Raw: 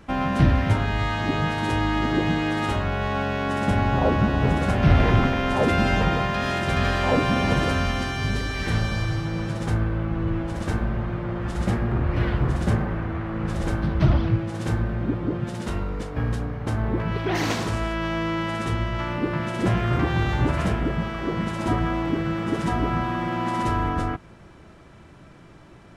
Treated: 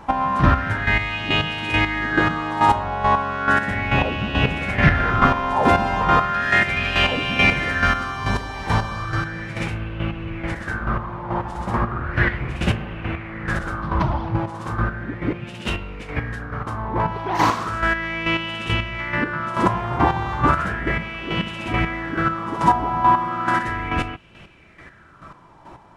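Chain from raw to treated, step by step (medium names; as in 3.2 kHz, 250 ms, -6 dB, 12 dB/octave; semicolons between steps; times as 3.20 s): square tremolo 2.3 Hz, depth 60%, duty 25%; sweeping bell 0.35 Hz 890–2800 Hz +17 dB; trim +2.5 dB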